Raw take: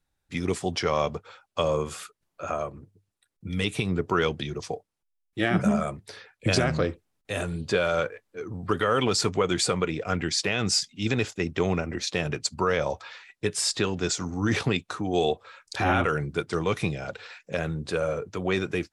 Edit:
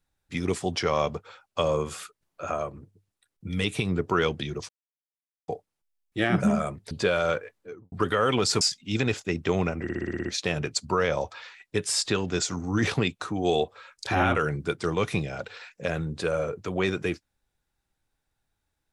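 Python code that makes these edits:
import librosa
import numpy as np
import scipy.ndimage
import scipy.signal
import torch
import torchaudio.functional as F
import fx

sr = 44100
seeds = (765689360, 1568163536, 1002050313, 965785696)

y = fx.studio_fade_out(x, sr, start_s=8.24, length_s=0.37)
y = fx.edit(y, sr, fx.insert_silence(at_s=4.69, length_s=0.79),
    fx.cut(start_s=6.12, length_s=1.48),
    fx.cut(start_s=9.3, length_s=1.42),
    fx.stutter(start_s=11.94, slice_s=0.06, count=8), tone=tone)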